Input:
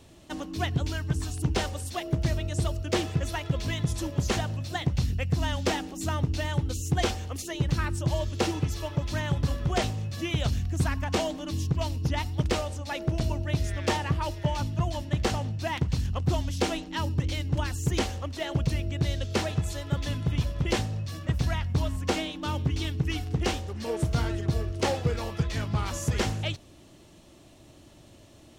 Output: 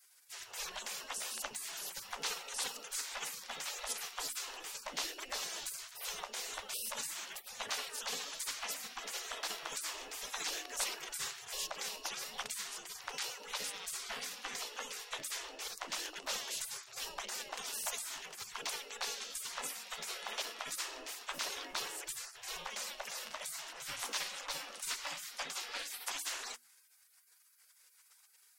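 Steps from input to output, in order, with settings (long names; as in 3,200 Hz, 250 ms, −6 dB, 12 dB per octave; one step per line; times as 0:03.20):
gate on every frequency bin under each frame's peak −30 dB weak
mains-hum notches 60/120/180/240/300/360 Hz
level +6 dB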